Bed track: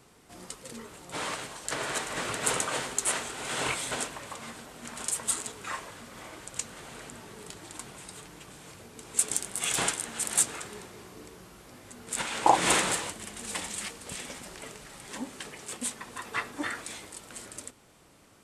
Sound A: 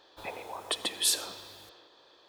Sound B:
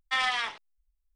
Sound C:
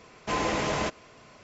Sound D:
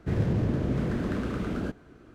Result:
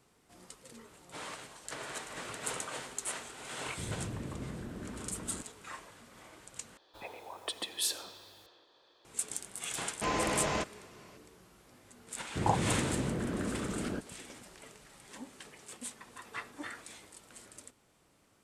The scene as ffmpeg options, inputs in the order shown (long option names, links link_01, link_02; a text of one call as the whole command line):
ffmpeg -i bed.wav -i cue0.wav -i cue1.wav -i cue2.wav -i cue3.wav -filter_complex "[4:a]asplit=2[link_01][link_02];[0:a]volume=-9.5dB[link_03];[link_02]lowshelf=frequency=130:gain=-8[link_04];[link_03]asplit=2[link_05][link_06];[link_05]atrim=end=6.774[link_07];[1:a]atrim=end=2.28,asetpts=PTS-STARTPTS,volume=-6dB[link_08];[link_06]atrim=start=9.046[link_09];[link_01]atrim=end=2.14,asetpts=PTS-STARTPTS,volume=-14dB,afade=type=in:duration=0.004:curve=hsin,afade=type=out:start_time=2.136:duration=0.004:curve=hsin,adelay=3710[link_10];[3:a]atrim=end=1.43,asetpts=PTS-STARTPTS,volume=-4dB,afade=type=in:duration=0.004:curve=hsin,afade=type=out:start_time=1.426:duration=0.004:curve=hsin,adelay=9740[link_11];[link_04]atrim=end=2.14,asetpts=PTS-STARTPTS,volume=-3.5dB,afade=type=in:duration=0.004:curve=hsin,afade=type=out:start_time=2.136:duration=0.004:curve=hsin,adelay=12290[link_12];[link_07][link_08]acrossfade=duration=0.004:curve1=hsin:curve2=hsin[link_13];[link_13][link_09]acrossfade=duration=0.004:curve1=hsin:curve2=hsin[link_14];[link_14][link_10][link_11][link_12]amix=inputs=4:normalize=0" out.wav